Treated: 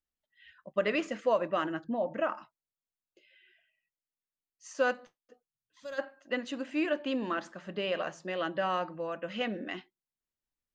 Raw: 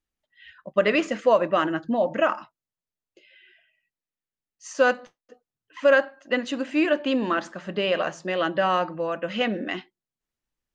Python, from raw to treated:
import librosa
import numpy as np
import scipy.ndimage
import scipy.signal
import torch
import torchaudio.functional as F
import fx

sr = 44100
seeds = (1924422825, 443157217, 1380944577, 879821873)

y = fx.high_shelf(x, sr, hz=3700.0, db=-12.0, at=(1.84, 2.37))
y = fx.spec_box(y, sr, start_s=5.47, length_s=0.51, low_hz=230.0, high_hz=3200.0, gain_db=-16)
y = y * 10.0 ** (-8.5 / 20.0)